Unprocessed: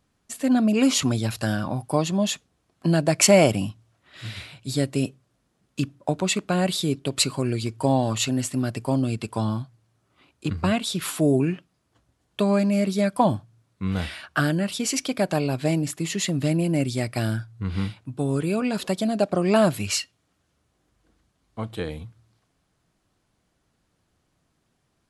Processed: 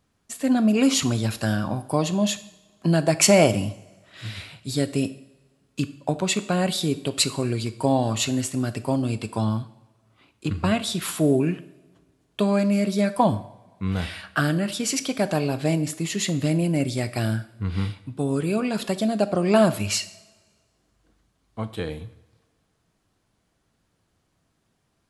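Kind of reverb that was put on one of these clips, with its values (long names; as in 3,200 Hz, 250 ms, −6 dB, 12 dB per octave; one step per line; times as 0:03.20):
coupled-rooms reverb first 0.64 s, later 1.7 s, from −16 dB, DRR 11.5 dB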